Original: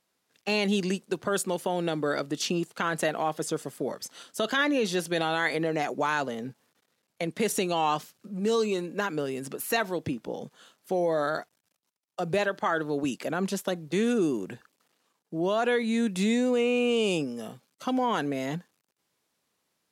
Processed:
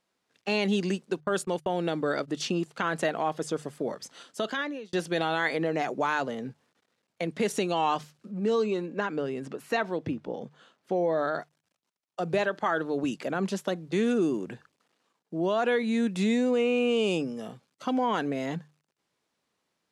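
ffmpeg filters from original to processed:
-filter_complex "[0:a]asplit=3[a][b][c];[a]afade=t=out:st=1.19:d=0.02[d];[b]agate=range=-34dB:threshold=-36dB:ratio=16:release=100:detection=peak,afade=t=in:st=1.19:d=0.02,afade=t=out:st=2.27:d=0.02[e];[c]afade=t=in:st=2.27:d=0.02[f];[d][e][f]amix=inputs=3:normalize=0,asettb=1/sr,asplit=3[g][h][i];[g]atrim=end=8.314[j];[h]atrim=start=8.31:end=11.4,asetpts=PTS-STARTPTS,afade=t=in:d=0.004:c=qsin,afade=t=out:st=3.086:d=0.004:c=qsin,lowpass=f=3.3k:p=1[k];[i]atrim=start=11.396[l];[j][k]acrossfade=d=0.004:c1=hsin:c2=qsin[m];[m][l]acrossfade=d=0.004:c1=qsin:c2=hsin,asplit=2[n][o];[n]atrim=end=4.93,asetpts=PTS-STARTPTS,afade=t=out:st=4.3:d=0.63[p];[o]atrim=start=4.93,asetpts=PTS-STARTPTS,afade=t=in:d=0.004:c=hsin[q];[p][q]concat=n=2:v=0:a=1,lowpass=10k,highshelf=f=4.9k:g=-6,bandreject=f=50:t=h:w=6,bandreject=f=100:t=h:w=6,bandreject=f=150:t=h:w=6"

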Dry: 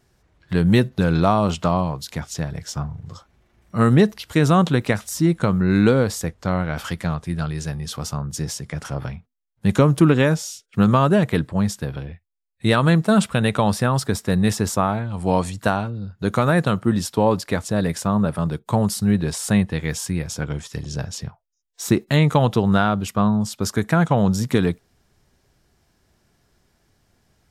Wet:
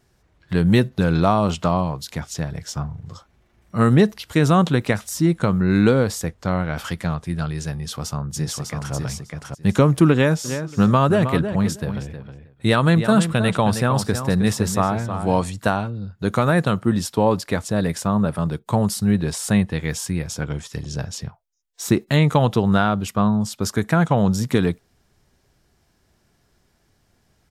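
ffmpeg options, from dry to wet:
-filter_complex "[0:a]asplit=2[a][b];[b]afade=t=in:st=7.76:d=0.01,afade=t=out:st=8.94:d=0.01,aecho=0:1:600|1200|1800:0.668344|0.100252|0.0150377[c];[a][c]amix=inputs=2:normalize=0,asplit=3[d][e][f];[d]afade=t=out:st=10.44:d=0.02[g];[e]asplit=2[h][i];[i]adelay=315,lowpass=f=3.6k:p=1,volume=-9dB,asplit=2[j][k];[k]adelay=315,lowpass=f=3.6k:p=1,volume=0.15[l];[h][j][l]amix=inputs=3:normalize=0,afade=t=in:st=10.44:d=0.02,afade=t=out:st=15.43:d=0.02[m];[f]afade=t=in:st=15.43:d=0.02[n];[g][m][n]amix=inputs=3:normalize=0"

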